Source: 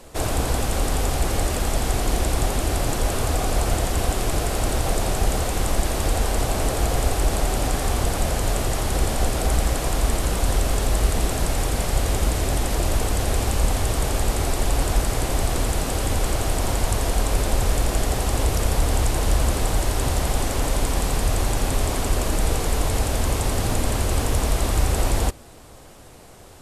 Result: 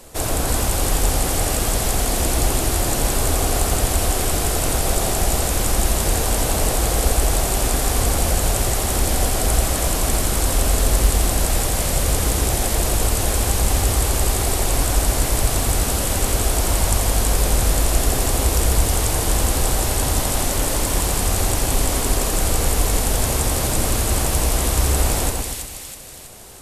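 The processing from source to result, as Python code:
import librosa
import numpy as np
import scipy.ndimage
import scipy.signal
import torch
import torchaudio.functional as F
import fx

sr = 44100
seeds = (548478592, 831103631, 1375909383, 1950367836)

y = fx.high_shelf(x, sr, hz=6400.0, db=9.5)
y = fx.echo_split(y, sr, split_hz=1900.0, low_ms=120, high_ms=324, feedback_pct=52, wet_db=-3.5)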